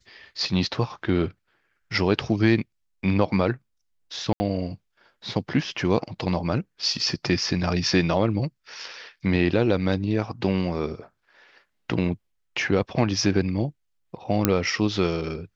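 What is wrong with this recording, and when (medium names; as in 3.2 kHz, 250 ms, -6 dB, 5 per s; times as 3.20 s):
4.33–4.40 s: dropout 70 ms
14.45 s: pop -3 dBFS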